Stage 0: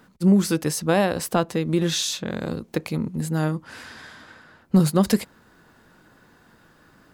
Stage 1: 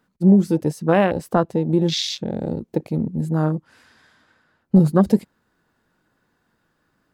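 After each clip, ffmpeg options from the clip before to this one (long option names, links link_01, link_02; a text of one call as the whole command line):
ffmpeg -i in.wav -af "afwtdn=0.0398,volume=3.5dB" out.wav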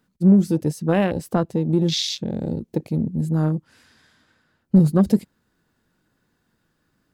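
ffmpeg -i in.wav -filter_complex "[0:a]equalizer=frequency=950:width_type=o:width=2.7:gain=-7,asplit=2[link_01][link_02];[link_02]asoftclip=type=tanh:threshold=-19.5dB,volume=-11.5dB[link_03];[link_01][link_03]amix=inputs=2:normalize=0" out.wav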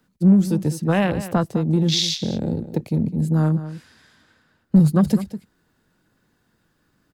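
ffmpeg -i in.wav -filter_complex "[0:a]acrossover=split=210|680|4100[link_01][link_02][link_03][link_04];[link_02]acompressor=threshold=-28dB:ratio=6[link_05];[link_01][link_05][link_03][link_04]amix=inputs=4:normalize=0,asplit=2[link_06][link_07];[link_07]adelay=204.1,volume=-13dB,highshelf=frequency=4000:gain=-4.59[link_08];[link_06][link_08]amix=inputs=2:normalize=0,volume=3dB" out.wav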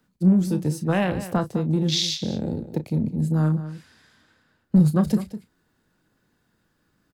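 ffmpeg -i in.wav -filter_complex "[0:a]asplit=2[link_01][link_02];[link_02]adelay=33,volume=-11.5dB[link_03];[link_01][link_03]amix=inputs=2:normalize=0,volume=-3dB" out.wav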